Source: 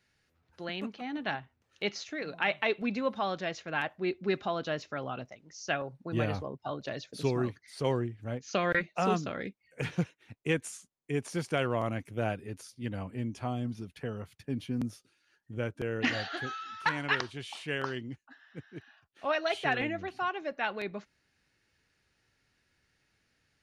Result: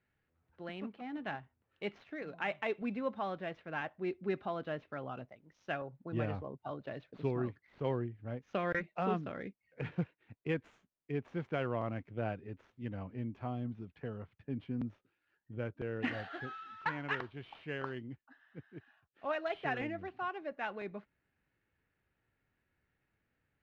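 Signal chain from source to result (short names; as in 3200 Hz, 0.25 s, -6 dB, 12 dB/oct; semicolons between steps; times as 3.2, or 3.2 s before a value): median filter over 9 samples; air absorption 260 m; gain -4.5 dB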